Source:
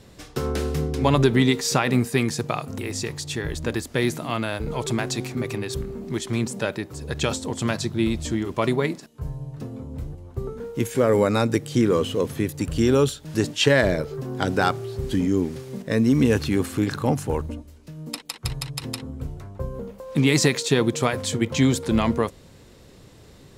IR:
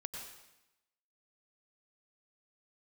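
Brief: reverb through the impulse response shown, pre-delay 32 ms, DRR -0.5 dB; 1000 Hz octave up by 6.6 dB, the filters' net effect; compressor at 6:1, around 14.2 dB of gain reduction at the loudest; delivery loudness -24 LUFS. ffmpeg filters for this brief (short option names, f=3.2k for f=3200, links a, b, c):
-filter_complex "[0:a]equalizer=f=1k:t=o:g=8.5,acompressor=threshold=-27dB:ratio=6,asplit=2[a][b];[1:a]atrim=start_sample=2205,adelay=32[c];[b][c]afir=irnorm=-1:irlink=0,volume=2dB[d];[a][d]amix=inputs=2:normalize=0,volume=5dB"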